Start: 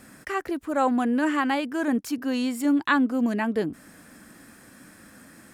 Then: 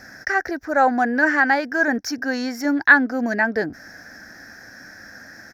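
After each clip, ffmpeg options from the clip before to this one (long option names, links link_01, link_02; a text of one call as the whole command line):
ffmpeg -i in.wav -af "firequalizer=gain_entry='entry(110,0);entry(160,-6);entry(450,-2);entry(740,6);entry(1100,-7);entry(1600,12);entry(2900,-13);entry(5600,13);entry(8200,-21);entry(13000,-4)':delay=0.05:min_phase=1,volume=4.5dB" out.wav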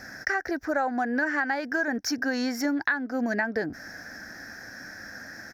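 ffmpeg -i in.wav -af "acompressor=threshold=-23dB:ratio=12" out.wav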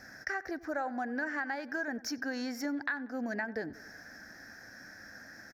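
ffmpeg -i in.wav -filter_complex "[0:a]asplit=2[link_01][link_02];[link_02]adelay=94,lowpass=frequency=2300:poles=1,volume=-18dB,asplit=2[link_03][link_04];[link_04]adelay=94,lowpass=frequency=2300:poles=1,volume=0.53,asplit=2[link_05][link_06];[link_06]adelay=94,lowpass=frequency=2300:poles=1,volume=0.53,asplit=2[link_07][link_08];[link_08]adelay=94,lowpass=frequency=2300:poles=1,volume=0.53[link_09];[link_01][link_03][link_05][link_07][link_09]amix=inputs=5:normalize=0,volume=-8.5dB" out.wav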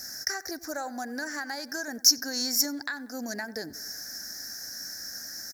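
ffmpeg -i in.wav -af "aexciter=amount=15.9:drive=3.2:freq=4300" out.wav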